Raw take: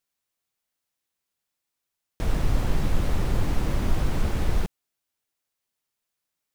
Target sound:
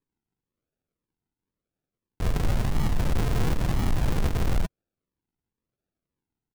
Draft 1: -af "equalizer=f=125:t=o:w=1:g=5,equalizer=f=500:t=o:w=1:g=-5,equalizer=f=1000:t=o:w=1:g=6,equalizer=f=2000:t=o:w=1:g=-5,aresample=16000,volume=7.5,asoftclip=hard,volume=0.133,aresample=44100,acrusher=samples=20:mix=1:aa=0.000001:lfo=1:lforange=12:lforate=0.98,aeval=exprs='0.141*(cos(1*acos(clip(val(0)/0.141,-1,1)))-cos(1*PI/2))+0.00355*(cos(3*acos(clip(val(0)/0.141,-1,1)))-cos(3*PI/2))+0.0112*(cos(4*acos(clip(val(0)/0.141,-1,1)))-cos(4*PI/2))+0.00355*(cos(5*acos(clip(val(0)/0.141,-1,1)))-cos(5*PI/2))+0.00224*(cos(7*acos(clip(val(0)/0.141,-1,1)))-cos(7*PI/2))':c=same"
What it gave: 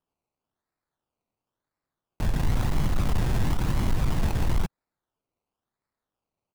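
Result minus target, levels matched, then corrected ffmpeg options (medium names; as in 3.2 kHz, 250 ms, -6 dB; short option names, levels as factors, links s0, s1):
decimation with a swept rate: distortion -6 dB
-af "equalizer=f=125:t=o:w=1:g=5,equalizer=f=500:t=o:w=1:g=-5,equalizer=f=1000:t=o:w=1:g=6,equalizer=f=2000:t=o:w=1:g=-5,aresample=16000,volume=7.5,asoftclip=hard,volume=0.133,aresample=44100,acrusher=samples=60:mix=1:aa=0.000001:lfo=1:lforange=36:lforate=0.98,aeval=exprs='0.141*(cos(1*acos(clip(val(0)/0.141,-1,1)))-cos(1*PI/2))+0.00355*(cos(3*acos(clip(val(0)/0.141,-1,1)))-cos(3*PI/2))+0.0112*(cos(4*acos(clip(val(0)/0.141,-1,1)))-cos(4*PI/2))+0.00355*(cos(5*acos(clip(val(0)/0.141,-1,1)))-cos(5*PI/2))+0.00224*(cos(7*acos(clip(val(0)/0.141,-1,1)))-cos(7*PI/2))':c=same"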